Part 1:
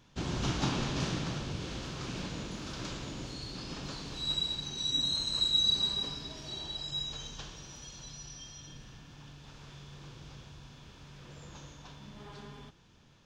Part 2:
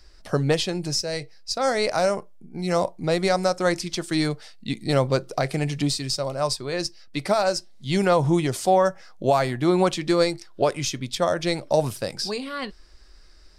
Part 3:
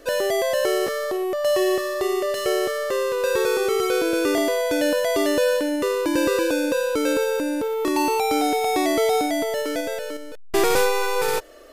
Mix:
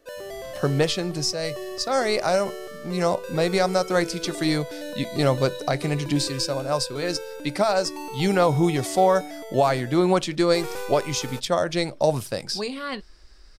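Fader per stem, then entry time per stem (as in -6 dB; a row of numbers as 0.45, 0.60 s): -18.5, 0.0, -14.0 dB; 0.00, 0.30, 0.00 s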